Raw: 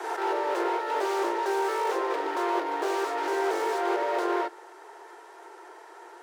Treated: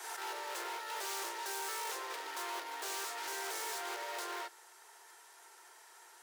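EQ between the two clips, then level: differentiator; +4.0 dB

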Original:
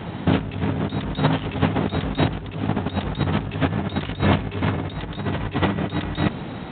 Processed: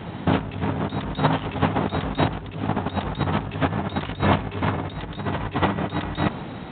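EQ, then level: dynamic EQ 960 Hz, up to +6 dB, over -37 dBFS, Q 0.98; -2.5 dB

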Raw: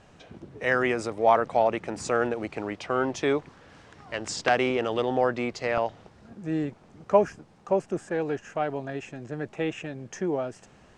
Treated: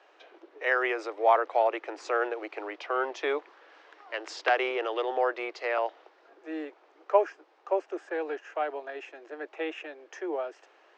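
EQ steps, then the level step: steep high-pass 310 Hz 72 dB/oct; air absorption 190 m; low shelf 400 Hz -11 dB; +1.5 dB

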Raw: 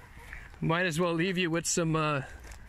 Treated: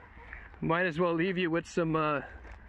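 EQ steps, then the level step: HPF 43 Hz; LPF 2200 Hz 12 dB/oct; bell 130 Hz -13.5 dB 0.44 oct; +1.0 dB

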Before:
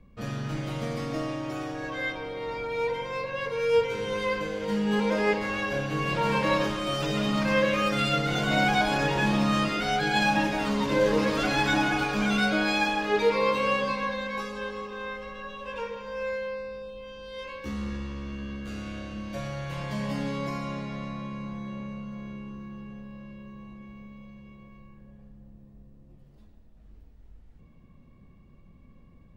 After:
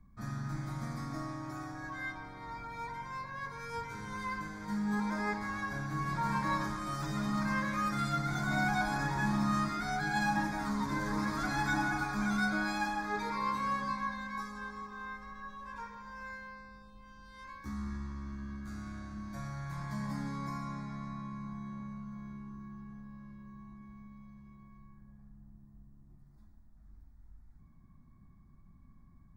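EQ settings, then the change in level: fixed phaser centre 1200 Hz, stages 4; -4.0 dB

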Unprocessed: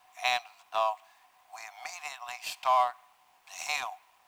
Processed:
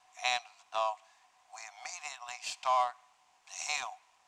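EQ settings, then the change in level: synth low-pass 7100 Hz, resonance Q 2.1; -4.0 dB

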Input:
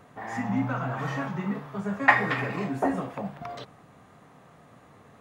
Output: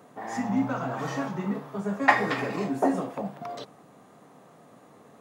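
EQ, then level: HPF 220 Hz 12 dB/oct; dynamic EQ 5300 Hz, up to +5 dB, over -49 dBFS, Q 1; bell 2000 Hz -8 dB 2.3 oct; +4.5 dB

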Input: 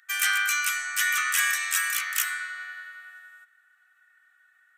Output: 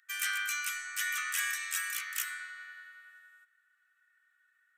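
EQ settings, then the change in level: HPF 1100 Hz 12 dB/oct; -8.5 dB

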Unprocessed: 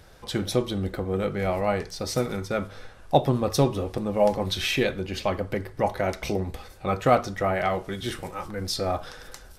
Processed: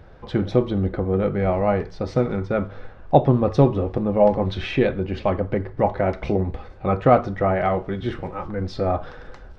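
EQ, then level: tape spacing loss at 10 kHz 39 dB; +7.0 dB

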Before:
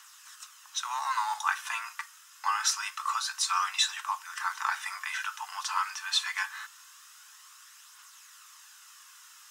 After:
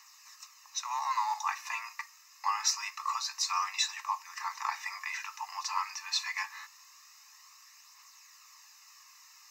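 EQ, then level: fixed phaser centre 2200 Hz, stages 8; 0.0 dB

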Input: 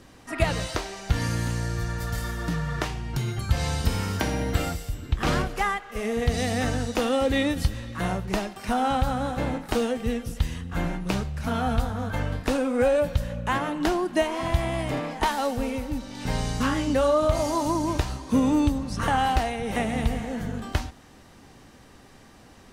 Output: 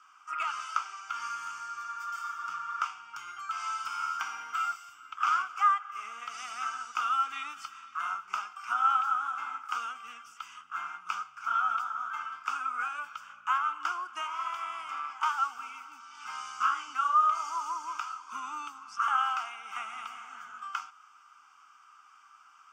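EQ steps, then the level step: resonant high-pass 1300 Hz, resonance Q 9.4; high shelf 10000 Hz -6 dB; fixed phaser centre 2700 Hz, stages 8; -7.5 dB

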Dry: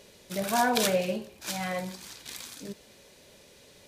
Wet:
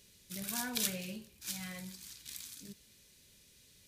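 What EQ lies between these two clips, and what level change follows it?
passive tone stack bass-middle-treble 6-0-2; high shelf 9300 Hz +7 dB; +8.0 dB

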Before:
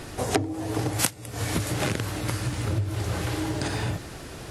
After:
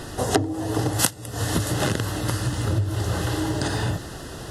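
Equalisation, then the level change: Butterworth band-stop 2300 Hz, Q 4.1; +3.5 dB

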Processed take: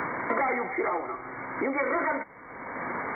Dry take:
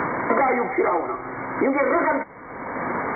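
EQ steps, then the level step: high shelf 2200 Hz +11.5 dB; -9.0 dB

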